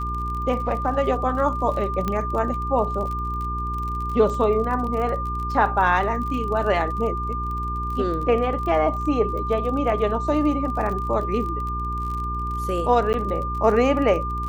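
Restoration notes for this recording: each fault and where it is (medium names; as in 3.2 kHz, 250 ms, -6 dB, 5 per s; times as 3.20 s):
crackle 36 per s -30 dBFS
hum 60 Hz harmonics 7 -29 dBFS
whine 1.2 kHz -27 dBFS
2.08 s: pop -12 dBFS
13.13–13.14 s: dropout 9.6 ms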